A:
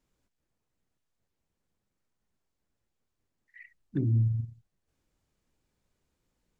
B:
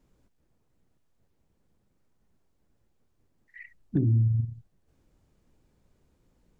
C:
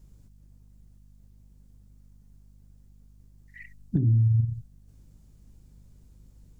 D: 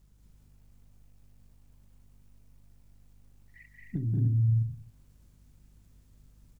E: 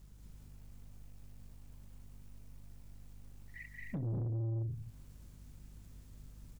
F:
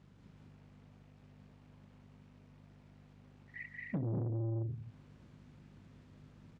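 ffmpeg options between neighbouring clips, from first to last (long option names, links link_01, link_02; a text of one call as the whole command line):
ffmpeg -i in.wav -af "tiltshelf=frequency=970:gain=5,acompressor=threshold=-33dB:ratio=2.5,volume=7.5dB" out.wav
ffmpeg -i in.wav -af "aeval=exprs='val(0)+0.000708*(sin(2*PI*50*n/s)+sin(2*PI*2*50*n/s)/2+sin(2*PI*3*50*n/s)/3+sin(2*PI*4*50*n/s)/4+sin(2*PI*5*50*n/s)/5)':channel_layout=same,acompressor=threshold=-28dB:ratio=6,bass=frequency=250:gain=11,treble=frequency=4000:gain=12,volume=-1dB" out.wav
ffmpeg -i in.wav -filter_complex "[0:a]acrusher=bits=10:mix=0:aa=0.000001,asplit=2[link_01][link_02];[link_02]aecho=0:1:183.7|218.7|291.5:0.631|0.794|0.501[link_03];[link_01][link_03]amix=inputs=2:normalize=0,volume=-8.5dB" out.wav
ffmpeg -i in.wav -af "alimiter=level_in=5dB:limit=-24dB:level=0:latency=1:release=367,volume=-5dB,asoftclip=type=tanh:threshold=-38.5dB,volume=5dB" out.wav
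ffmpeg -i in.wav -af "highpass=140,lowpass=2800,volume=4.5dB" out.wav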